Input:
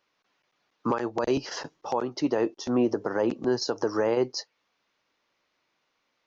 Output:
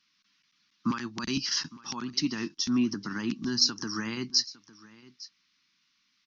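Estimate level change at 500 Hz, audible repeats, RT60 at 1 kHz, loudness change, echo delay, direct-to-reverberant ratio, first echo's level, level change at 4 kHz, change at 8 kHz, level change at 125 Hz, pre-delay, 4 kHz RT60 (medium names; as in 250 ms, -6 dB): -17.0 dB, 1, no reverb, -1.5 dB, 857 ms, no reverb, -20.0 dB, +9.5 dB, no reading, -0.5 dB, no reverb, no reverb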